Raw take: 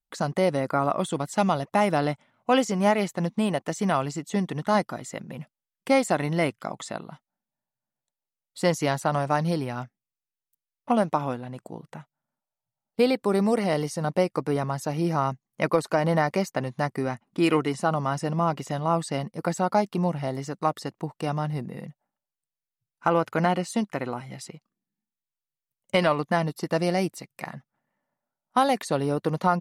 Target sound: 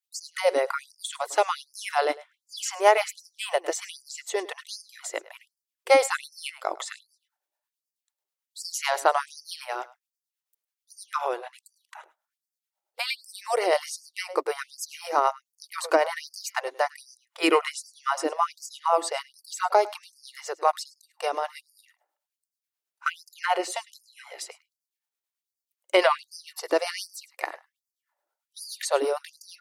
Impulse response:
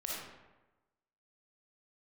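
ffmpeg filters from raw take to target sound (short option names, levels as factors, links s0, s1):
-filter_complex "[0:a]asplit=2[s0][s1];[s1]aecho=0:1:104:0.106[s2];[s0][s2]amix=inputs=2:normalize=0,acrossover=split=490[s3][s4];[s3]aeval=exprs='val(0)*(1-0.5/2+0.5/2*cos(2*PI*9.2*n/s))':c=same[s5];[s4]aeval=exprs='val(0)*(1-0.5/2-0.5/2*cos(2*PI*9.2*n/s))':c=same[s6];[s5][s6]amix=inputs=2:normalize=0,afftfilt=real='re*gte(b*sr/1024,300*pow(4600/300,0.5+0.5*sin(2*PI*1.3*pts/sr)))':imag='im*gte(b*sr/1024,300*pow(4600/300,0.5+0.5*sin(2*PI*1.3*pts/sr)))':win_size=1024:overlap=0.75,volume=2.11"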